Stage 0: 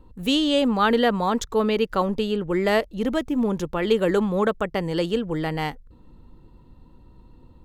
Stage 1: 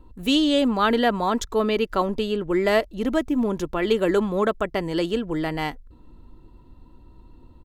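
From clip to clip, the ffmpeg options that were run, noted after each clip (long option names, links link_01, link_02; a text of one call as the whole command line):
ffmpeg -i in.wav -af "aecho=1:1:3:0.32" out.wav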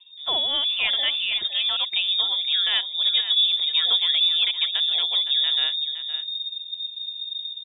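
ffmpeg -i in.wav -af "asubboost=boost=8:cutoff=180,lowpass=frequency=3100:width_type=q:width=0.5098,lowpass=frequency=3100:width_type=q:width=0.6013,lowpass=frequency=3100:width_type=q:width=0.9,lowpass=frequency=3100:width_type=q:width=2.563,afreqshift=-3700,aecho=1:1:514:0.282,volume=-3.5dB" out.wav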